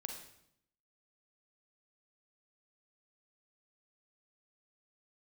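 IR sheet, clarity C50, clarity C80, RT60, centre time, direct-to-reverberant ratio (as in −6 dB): 4.5 dB, 8.0 dB, 0.75 s, 30 ms, 3.0 dB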